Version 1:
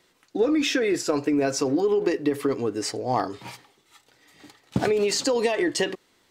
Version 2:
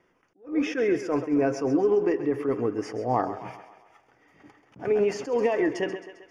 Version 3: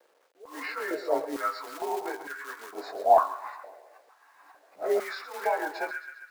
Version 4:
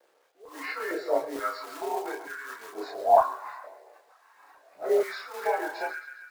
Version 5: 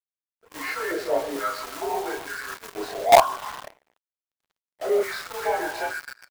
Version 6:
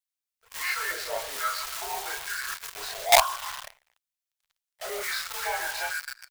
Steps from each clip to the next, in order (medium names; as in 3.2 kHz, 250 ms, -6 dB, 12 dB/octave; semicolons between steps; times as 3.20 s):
boxcar filter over 11 samples; thinning echo 133 ms, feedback 56%, high-pass 300 Hz, level -11.5 dB; attacks held to a fixed rise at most 200 dB/s
frequency axis rescaled in octaves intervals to 92%; companded quantiser 6-bit; step-sequenced high-pass 2.2 Hz 520–1500 Hz
chorus voices 6, 0.47 Hz, delay 30 ms, depth 1.6 ms; trim +3 dB
in parallel at -8 dB: companded quantiser 2-bit; on the sum: crossover distortion -47.5 dBFS
amplifier tone stack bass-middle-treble 10-0-10; trim +6 dB